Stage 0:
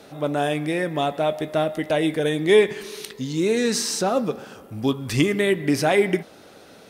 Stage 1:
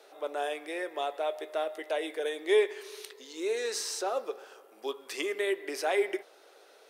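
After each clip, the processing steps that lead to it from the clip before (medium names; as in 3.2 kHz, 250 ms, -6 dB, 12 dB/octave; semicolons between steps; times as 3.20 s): Chebyshev high-pass 380 Hz, order 4; trim -8.5 dB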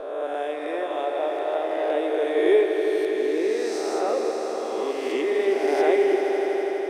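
reverse spectral sustain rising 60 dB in 1.59 s; tilt EQ -3.5 dB/octave; echo with a slow build-up 82 ms, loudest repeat 5, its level -11 dB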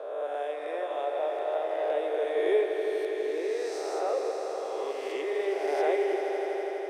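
ladder high-pass 380 Hz, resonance 30%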